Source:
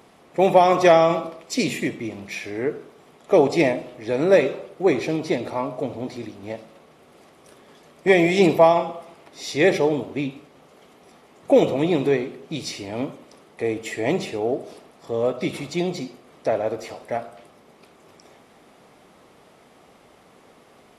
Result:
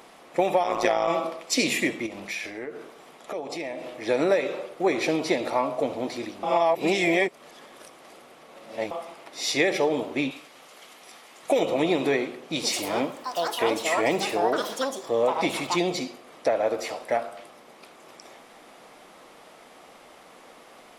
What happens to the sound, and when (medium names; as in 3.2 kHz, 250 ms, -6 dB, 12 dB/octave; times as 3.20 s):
0.63–1.08 s: AM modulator 110 Hz, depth 85%
2.06–4.02 s: compression 5:1, threshold -33 dBFS
6.43–8.91 s: reverse
10.31–11.59 s: tilt shelf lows -5.5 dB, about 1.2 kHz
12.40–17.24 s: ever faster or slower copies 157 ms, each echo +7 st, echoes 2, each echo -6 dB
whole clip: peaking EQ 99 Hz -14.5 dB 2.4 oct; band-stop 410 Hz, Q 12; compression 16:1, threshold -23 dBFS; trim +5 dB